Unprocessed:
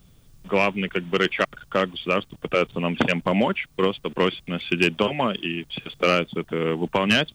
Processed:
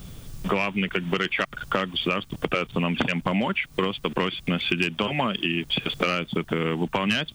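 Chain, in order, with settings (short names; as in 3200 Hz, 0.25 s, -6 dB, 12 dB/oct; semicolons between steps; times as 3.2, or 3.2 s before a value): dynamic EQ 480 Hz, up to -6 dB, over -32 dBFS, Q 0.98; in parallel at +0.5 dB: limiter -16.5 dBFS, peak gain reduction 6.5 dB; on the sum: compressor 6:1, threshold -29 dBFS, peak gain reduction 16 dB; gain +7 dB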